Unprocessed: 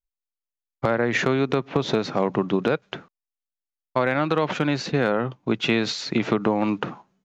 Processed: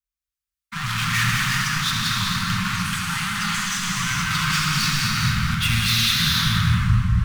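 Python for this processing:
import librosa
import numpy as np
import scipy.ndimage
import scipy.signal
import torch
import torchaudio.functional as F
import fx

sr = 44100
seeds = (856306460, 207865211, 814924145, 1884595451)

p1 = fx.tape_stop_end(x, sr, length_s=1.4)
p2 = scipy.signal.sosfilt(scipy.signal.butter(4, 41.0, 'highpass', fs=sr, output='sos'), p1)
p3 = fx.leveller(p2, sr, passes=2)
p4 = 10.0 ** (-25.0 / 20.0) * (np.abs((p3 / 10.0 ** (-25.0 / 20.0) + 3.0) % 4.0 - 2.0) - 1.0)
p5 = p3 + (p4 * librosa.db_to_amplitude(-3.5))
p6 = fx.echo_pitch(p5, sr, ms=127, semitones=5, count=3, db_per_echo=-6.0)
p7 = np.clip(p6, -10.0 ** (-20.5 / 20.0), 10.0 ** (-20.5 / 20.0))
p8 = scipy.signal.sosfilt(scipy.signal.ellip(3, 1.0, 80, [180.0, 1200.0], 'bandstop', fs=sr, output='sos'), p7)
p9 = p8 + fx.echo_single(p8, sr, ms=202, db=-7.5, dry=0)
y = fx.rev_gated(p9, sr, seeds[0], gate_ms=500, shape='flat', drr_db=-3.0)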